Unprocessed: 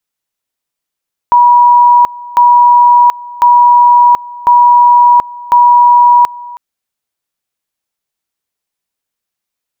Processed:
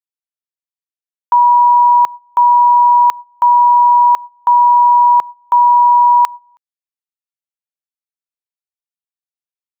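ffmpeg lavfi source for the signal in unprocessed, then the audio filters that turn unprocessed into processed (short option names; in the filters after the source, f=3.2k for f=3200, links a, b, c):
-f lavfi -i "aevalsrc='pow(10,(-2-21.5*gte(mod(t,1.05),0.73))/20)*sin(2*PI*967*t)':d=5.25:s=44100"
-af "highpass=f=1k:p=1,agate=range=-20dB:threshold=-22dB:ratio=16:detection=peak"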